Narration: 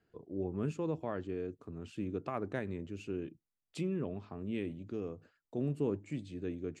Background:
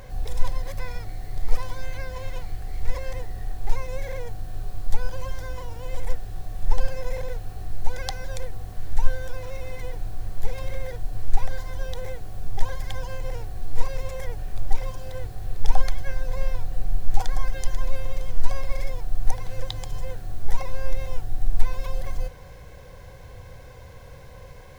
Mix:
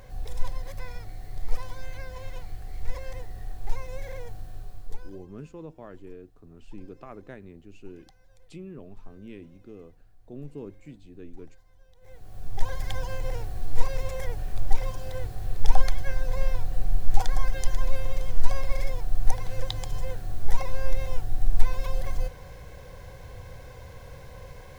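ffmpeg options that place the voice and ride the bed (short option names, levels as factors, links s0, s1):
-filter_complex "[0:a]adelay=4750,volume=0.501[s0];[1:a]volume=12.6,afade=t=out:st=4.38:d=0.88:silence=0.0794328,afade=t=in:st=12:d=0.86:silence=0.0421697[s1];[s0][s1]amix=inputs=2:normalize=0"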